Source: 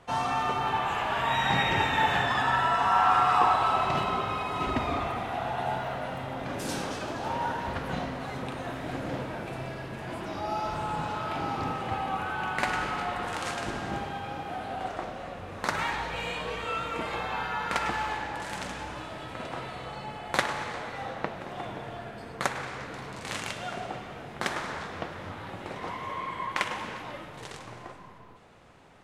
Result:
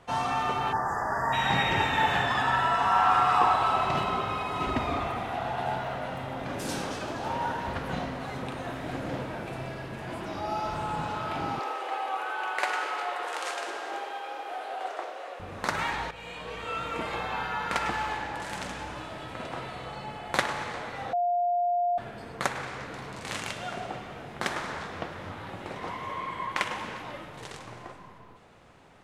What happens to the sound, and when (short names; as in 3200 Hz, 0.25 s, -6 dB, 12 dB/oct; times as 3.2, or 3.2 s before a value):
0.73–1.33 spectral delete 2000–4700 Hz
5.36–6.17 self-modulated delay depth 0.057 ms
11.59–15.4 steep high-pass 370 Hz
16.11–16.92 fade in, from -12 dB
21.13–21.98 bleep 704 Hz -23 dBFS